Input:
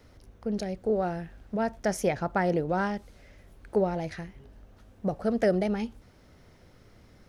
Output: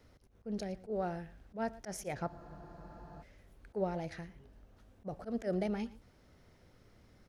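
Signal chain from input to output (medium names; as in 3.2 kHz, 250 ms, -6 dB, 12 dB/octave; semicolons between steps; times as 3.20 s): slow attack 102 ms; delay 114 ms -19 dB; spectral freeze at 2.30 s, 0.92 s; trim -7 dB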